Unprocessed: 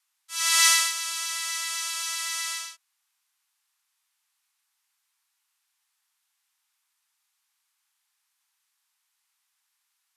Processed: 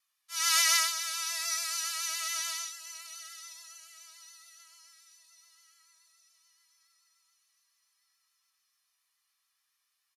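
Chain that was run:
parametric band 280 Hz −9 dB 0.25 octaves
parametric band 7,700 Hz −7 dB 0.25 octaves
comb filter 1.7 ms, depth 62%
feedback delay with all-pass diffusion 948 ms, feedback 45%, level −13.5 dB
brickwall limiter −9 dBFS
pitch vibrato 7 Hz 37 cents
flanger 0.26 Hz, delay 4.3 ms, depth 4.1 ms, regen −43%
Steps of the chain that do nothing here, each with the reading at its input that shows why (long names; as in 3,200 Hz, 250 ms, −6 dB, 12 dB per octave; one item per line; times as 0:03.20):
parametric band 280 Hz: nothing at its input below 640 Hz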